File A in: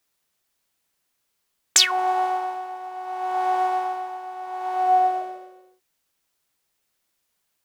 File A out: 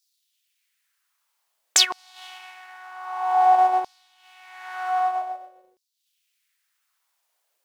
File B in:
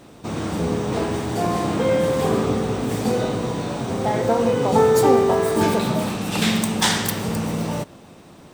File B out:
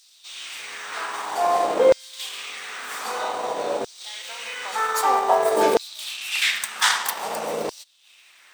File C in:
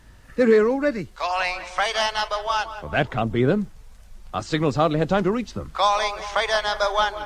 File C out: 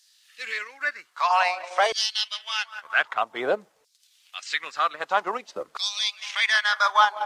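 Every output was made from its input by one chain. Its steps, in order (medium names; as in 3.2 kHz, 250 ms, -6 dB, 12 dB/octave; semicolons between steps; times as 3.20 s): LFO high-pass saw down 0.52 Hz 440–4900 Hz; transient shaper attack -2 dB, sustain -8 dB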